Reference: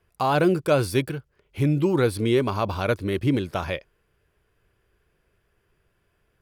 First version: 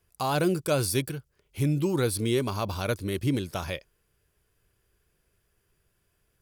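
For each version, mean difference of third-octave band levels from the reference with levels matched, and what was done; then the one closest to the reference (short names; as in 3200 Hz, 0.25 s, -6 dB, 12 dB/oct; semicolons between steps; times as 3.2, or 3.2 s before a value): 3.5 dB: tone controls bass +3 dB, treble +13 dB; gain -6 dB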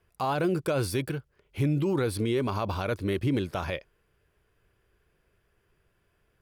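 2.0 dB: limiter -17.5 dBFS, peak gain reduction 9 dB; gain -1.5 dB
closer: second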